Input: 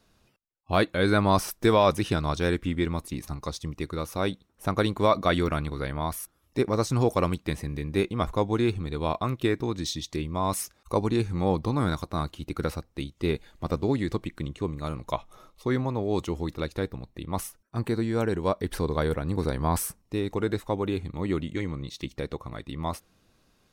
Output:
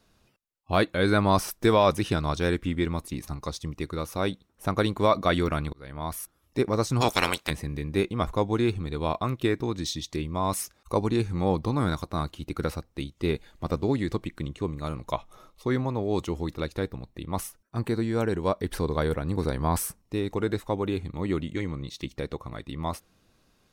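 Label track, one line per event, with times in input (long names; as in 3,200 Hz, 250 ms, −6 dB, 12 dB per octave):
5.730000	6.190000	fade in linear
7.000000	7.490000	ceiling on every frequency bin ceiling under each frame's peak by 26 dB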